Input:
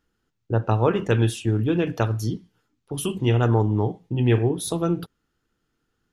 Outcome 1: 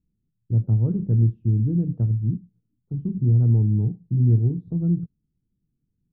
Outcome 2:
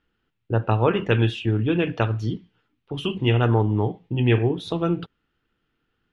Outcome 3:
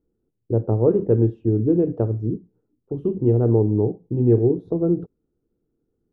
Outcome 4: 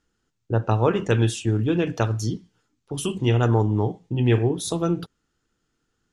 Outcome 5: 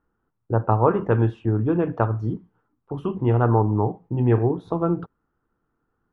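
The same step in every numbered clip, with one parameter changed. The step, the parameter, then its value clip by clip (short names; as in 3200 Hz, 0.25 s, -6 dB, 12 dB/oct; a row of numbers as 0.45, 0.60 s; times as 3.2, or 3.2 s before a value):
synth low-pass, frequency: 170, 2900, 430, 7600, 1100 Hz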